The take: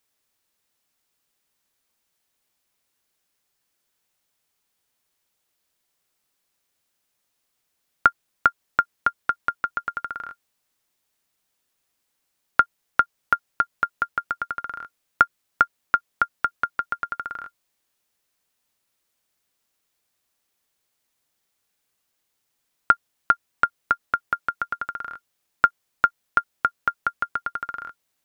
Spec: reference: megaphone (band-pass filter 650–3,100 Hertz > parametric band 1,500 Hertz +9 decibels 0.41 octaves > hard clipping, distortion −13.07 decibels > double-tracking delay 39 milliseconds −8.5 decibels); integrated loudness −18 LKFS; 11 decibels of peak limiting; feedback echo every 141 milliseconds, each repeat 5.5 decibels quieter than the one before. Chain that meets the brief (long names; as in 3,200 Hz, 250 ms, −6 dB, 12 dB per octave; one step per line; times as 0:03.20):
brickwall limiter −12.5 dBFS
band-pass filter 650–3,100 Hz
parametric band 1,500 Hz +9 dB 0.41 octaves
repeating echo 141 ms, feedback 53%, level −5.5 dB
hard clipping −13 dBFS
double-tracking delay 39 ms −8.5 dB
level +5.5 dB